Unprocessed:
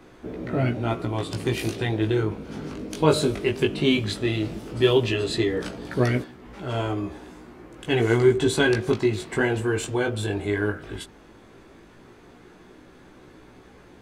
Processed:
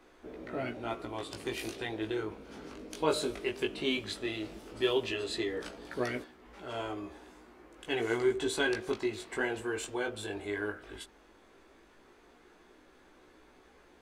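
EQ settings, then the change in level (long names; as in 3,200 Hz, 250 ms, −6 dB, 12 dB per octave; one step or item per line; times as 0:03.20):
parametric band 130 Hz −15 dB 1.5 octaves
−7.5 dB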